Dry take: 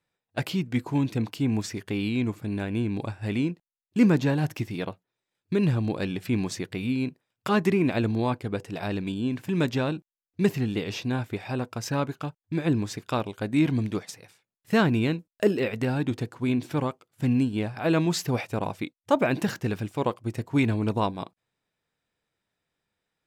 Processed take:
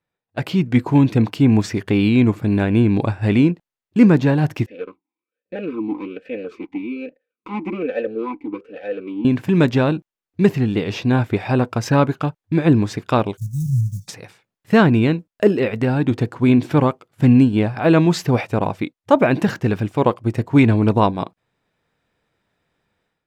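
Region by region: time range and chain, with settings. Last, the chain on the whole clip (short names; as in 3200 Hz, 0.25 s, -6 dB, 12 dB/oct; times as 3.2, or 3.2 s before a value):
4.66–9.25 minimum comb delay 3.9 ms + vowel sweep e-u 1.2 Hz
13.37–14.08 block floating point 5-bit + Chebyshev band-stop 140–6000 Hz, order 4
whole clip: high shelf 4000 Hz -11.5 dB; AGC gain up to 13 dB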